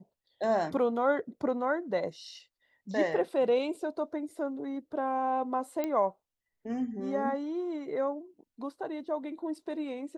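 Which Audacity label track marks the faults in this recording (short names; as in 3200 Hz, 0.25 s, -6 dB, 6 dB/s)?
5.840000	5.840000	pop -19 dBFS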